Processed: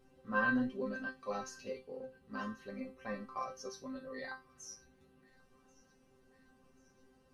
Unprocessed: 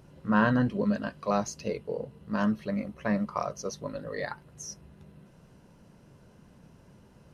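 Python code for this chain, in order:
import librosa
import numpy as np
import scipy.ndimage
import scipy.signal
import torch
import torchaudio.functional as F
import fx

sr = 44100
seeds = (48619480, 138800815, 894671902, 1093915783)

y = fx.resonator_bank(x, sr, root=60, chord='fifth', decay_s=0.25)
y = fx.echo_wet_highpass(y, sr, ms=1086, feedback_pct=60, hz=1600.0, wet_db=-23.0)
y = y * 10.0 ** (7.0 / 20.0)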